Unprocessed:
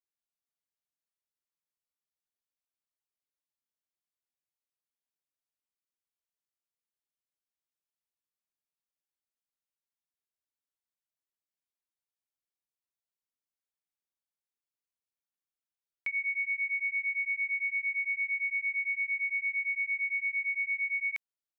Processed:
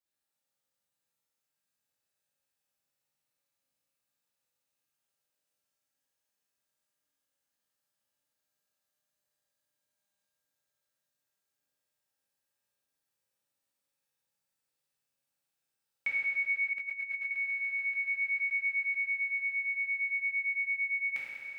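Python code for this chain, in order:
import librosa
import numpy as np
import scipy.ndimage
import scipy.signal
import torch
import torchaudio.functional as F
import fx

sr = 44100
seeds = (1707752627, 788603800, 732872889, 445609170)

y = fx.echo_swell(x, sr, ms=144, loudest=8, wet_db=-15.5)
y = fx.rev_fdn(y, sr, rt60_s=2.4, lf_ratio=0.9, hf_ratio=0.9, size_ms=11.0, drr_db=-7.5)
y = fx.over_compress(y, sr, threshold_db=-36.0, ratio=-0.5, at=(16.73, 17.31))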